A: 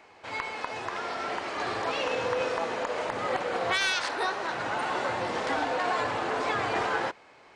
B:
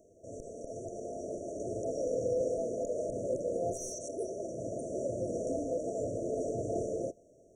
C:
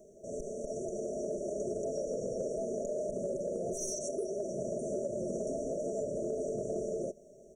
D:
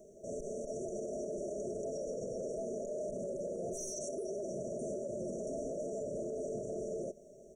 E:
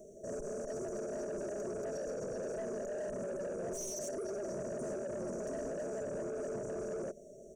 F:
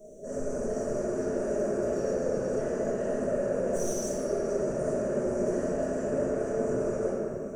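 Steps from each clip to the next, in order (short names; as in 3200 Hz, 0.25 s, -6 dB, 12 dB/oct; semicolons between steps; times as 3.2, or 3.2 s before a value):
FFT band-reject 690–5600 Hz; low shelf 68 Hz +8 dB; gain -1 dB
comb 5 ms, depth 80%; compressor, threshold -35 dBFS, peak gain reduction 8 dB; gain +3 dB
limiter -31.5 dBFS, peak gain reduction 7 dB
soft clip -37.5 dBFS, distortion -14 dB; gain +3 dB
shoebox room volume 130 m³, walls hard, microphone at 1.4 m; gain -2 dB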